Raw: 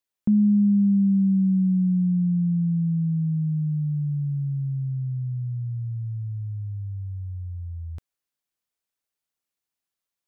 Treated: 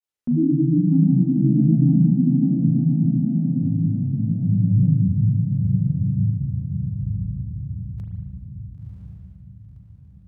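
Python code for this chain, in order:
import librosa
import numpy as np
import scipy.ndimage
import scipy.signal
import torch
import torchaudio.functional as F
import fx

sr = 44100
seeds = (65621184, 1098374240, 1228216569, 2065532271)

y = fx.doppler_pass(x, sr, speed_mps=14, closest_m=13.0, pass_at_s=3.78)
y = fx.dynamic_eq(y, sr, hz=150.0, q=3.2, threshold_db=-41.0, ratio=4.0, max_db=6)
y = fx.over_compress(y, sr, threshold_db=-28.0, ratio=-1.0)
y = fx.granulator(y, sr, seeds[0], grain_ms=100.0, per_s=20.0, spray_ms=17.0, spread_st=7)
y = fx.echo_diffused(y, sr, ms=1015, feedback_pct=42, wet_db=-3.5)
y = fx.rev_spring(y, sr, rt60_s=1.3, pass_ms=(37,), chirp_ms=50, drr_db=2.5)
y = F.gain(torch.from_numpy(y), 7.0).numpy()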